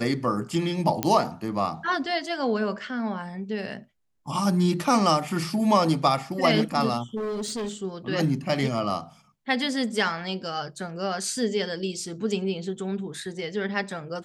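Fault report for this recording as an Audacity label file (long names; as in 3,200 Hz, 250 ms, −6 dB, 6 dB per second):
1.030000	1.030000	click −7 dBFS
7.160000	7.730000	clipping −27 dBFS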